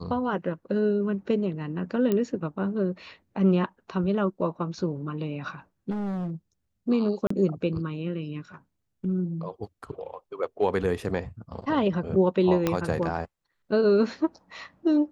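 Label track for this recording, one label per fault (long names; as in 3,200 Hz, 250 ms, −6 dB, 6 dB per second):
2.120000	2.120000	click −14 dBFS
5.900000	6.310000	clipping −28 dBFS
7.270000	7.300000	drop-out 34 ms
12.670000	12.670000	click −10 dBFS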